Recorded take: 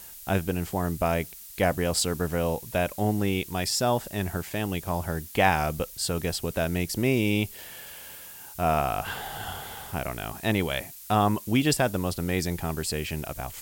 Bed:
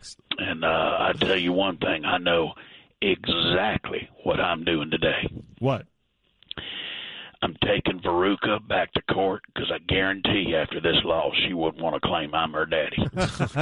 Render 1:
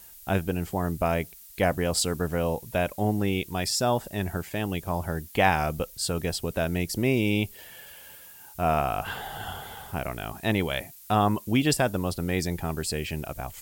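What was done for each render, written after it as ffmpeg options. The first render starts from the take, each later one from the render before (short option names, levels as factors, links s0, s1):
-af "afftdn=nr=6:nf=-45"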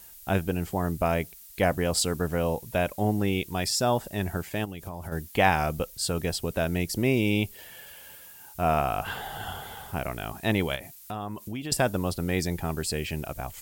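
-filter_complex "[0:a]asplit=3[s0][s1][s2];[s0]afade=t=out:st=4.64:d=0.02[s3];[s1]acompressor=threshold=0.0251:ratio=12:attack=3.2:release=140:knee=1:detection=peak,afade=t=in:st=4.64:d=0.02,afade=t=out:st=5.11:d=0.02[s4];[s2]afade=t=in:st=5.11:d=0.02[s5];[s3][s4][s5]amix=inputs=3:normalize=0,asettb=1/sr,asplit=3[s6][s7][s8];[s6]atrim=end=10.754[s9];[s7]atrim=start=10.75:end=11.72,asetpts=PTS-STARTPTS,afade=t=in:d=0.004:c=qsin,afade=t=out:st=0.966:d=0.004:c=qsin,acompressor=threshold=0.02:ratio=3:attack=3.2:release=140:knee=1:detection=peak[s10];[s8]atrim=start=11.716[s11];[s9][s10]acrossfade=d=0.004:c1=hsin:c2=qsin[s12];[s12][s11]acrossfade=d=0.004:c1=qsin:c2=hsin"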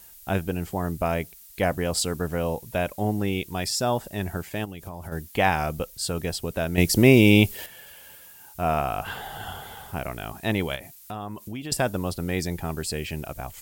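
-filter_complex "[0:a]asplit=3[s0][s1][s2];[s0]atrim=end=6.782[s3];[s1]atrim=start=6.778:end=7.662,asetpts=PTS-STARTPTS,volume=2.82[s4];[s2]atrim=start=7.658[s5];[s3][s4]acrossfade=d=0.004:c1=hsin:c2=hsin[s6];[s6][s5]acrossfade=d=0.004:c1=hsin:c2=hsin"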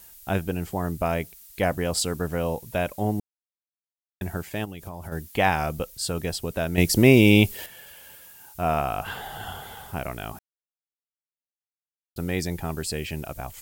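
-filter_complex "[0:a]asplit=5[s0][s1][s2][s3][s4];[s0]atrim=end=3.2,asetpts=PTS-STARTPTS,afade=t=out:st=3.196:d=0.004:c=hsin[s5];[s1]atrim=start=3.2:end=4.21,asetpts=PTS-STARTPTS,volume=0[s6];[s2]atrim=start=4.21:end=10.39,asetpts=PTS-STARTPTS,afade=t=in:d=0.004:c=hsin,afade=t=out:st=6.176:d=0.004:c=hsin[s7];[s3]atrim=start=10.39:end=12.16,asetpts=PTS-STARTPTS,volume=0[s8];[s4]atrim=start=12.16,asetpts=PTS-STARTPTS,afade=t=in:d=0.004:c=hsin[s9];[s5][s6][s7][s8][s9]concat=n=5:v=0:a=1"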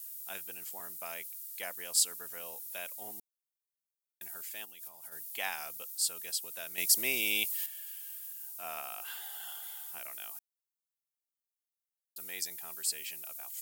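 -af "highpass=f=170:p=1,aderivative"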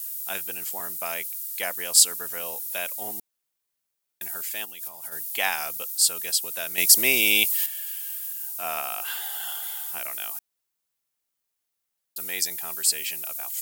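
-af "volume=3.55,alimiter=limit=0.891:level=0:latency=1"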